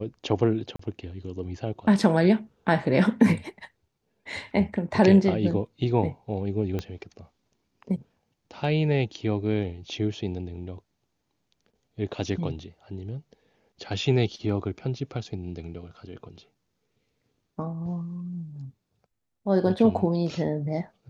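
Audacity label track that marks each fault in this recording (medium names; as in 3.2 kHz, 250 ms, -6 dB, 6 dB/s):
0.760000	0.790000	dropout 34 ms
6.790000	6.790000	pop -18 dBFS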